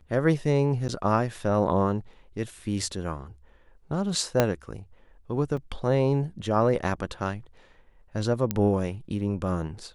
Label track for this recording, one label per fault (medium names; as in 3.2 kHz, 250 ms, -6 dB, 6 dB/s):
0.880000	0.890000	dropout 9.1 ms
4.400000	4.400000	pop -6 dBFS
5.570000	5.570000	dropout 3.8 ms
8.510000	8.510000	pop -11 dBFS